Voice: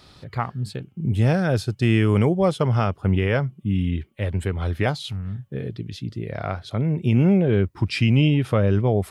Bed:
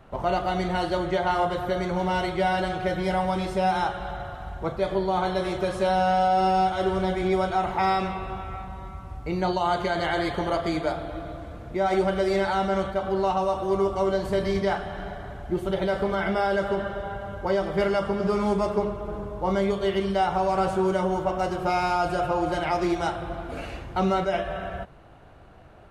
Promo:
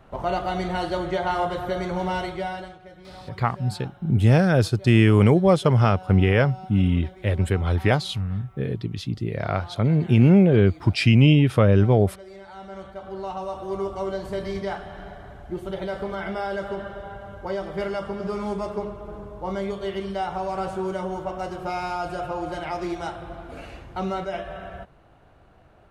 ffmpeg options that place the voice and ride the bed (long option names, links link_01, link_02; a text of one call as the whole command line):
ffmpeg -i stem1.wav -i stem2.wav -filter_complex "[0:a]adelay=3050,volume=2.5dB[link_01];[1:a]volume=14.5dB,afade=type=out:start_time=2.08:duration=0.71:silence=0.112202,afade=type=in:start_time=12.44:duration=1.39:silence=0.177828[link_02];[link_01][link_02]amix=inputs=2:normalize=0" out.wav